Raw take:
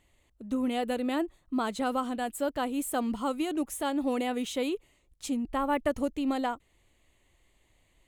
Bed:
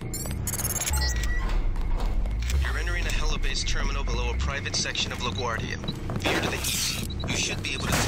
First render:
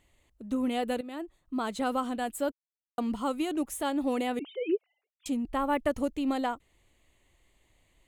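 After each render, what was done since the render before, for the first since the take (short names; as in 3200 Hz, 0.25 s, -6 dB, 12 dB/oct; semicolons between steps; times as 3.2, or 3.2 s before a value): 1.01–1.82 fade in, from -14 dB; 2.52–2.98 mute; 4.39–5.26 sine-wave speech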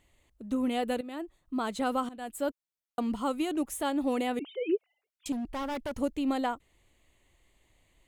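2.09–2.49 fade in, from -17 dB; 5.32–5.99 hard clip -31.5 dBFS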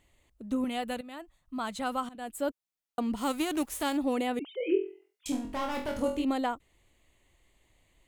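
0.64–2.15 bell 370 Hz -14.5 dB 0.68 oct; 3.16–3.96 spectral whitening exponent 0.6; 4.58–6.25 flutter echo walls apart 4 m, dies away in 0.4 s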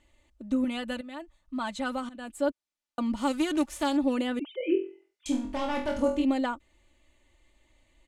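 LPF 7900 Hz 12 dB/oct; comb 3.4 ms, depth 64%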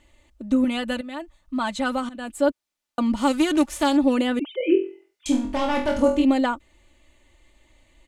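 gain +7 dB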